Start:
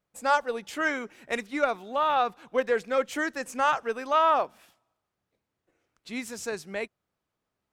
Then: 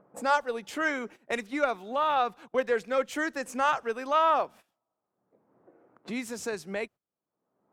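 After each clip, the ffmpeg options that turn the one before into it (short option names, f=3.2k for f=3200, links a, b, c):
-filter_complex "[0:a]agate=range=-19dB:threshold=-46dB:ratio=16:detection=peak,acrossover=split=150|1200[a][b][c];[b]acompressor=mode=upward:threshold=-28dB:ratio=2.5[d];[a][d][c]amix=inputs=3:normalize=0,volume=-1.5dB"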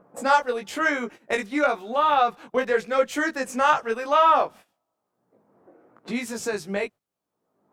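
-af "flanger=delay=17:depth=3.2:speed=0.97,volume=8.5dB"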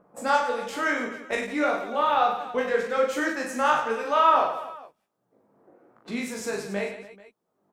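-af "aecho=1:1:40|96|174.4|284.2|437.8:0.631|0.398|0.251|0.158|0.1,volume=-4dB"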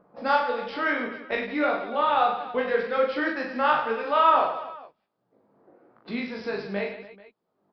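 -af "aresample=11025,aresample=44100"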